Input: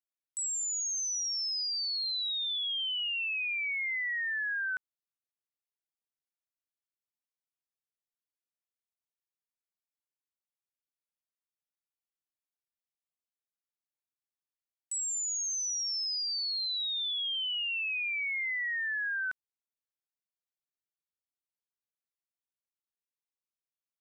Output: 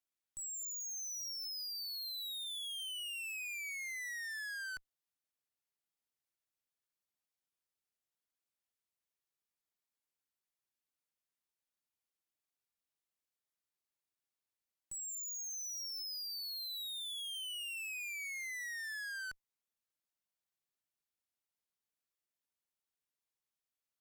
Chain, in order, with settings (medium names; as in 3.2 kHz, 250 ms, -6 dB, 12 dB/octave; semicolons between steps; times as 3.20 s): valve stage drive 45 dB, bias 0.5; trim +3 dB